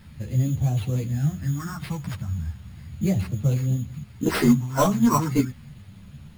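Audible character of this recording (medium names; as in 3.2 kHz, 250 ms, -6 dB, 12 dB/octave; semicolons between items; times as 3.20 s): a quantiser's noise floor 10-bit, dither triangular; phasing stages 4, 0.36 Hz, lowest notch 410–1700 Hz; aliases and images of a low sample rate 6.8 kHz, jitter 0%; a shimmering, thickened sound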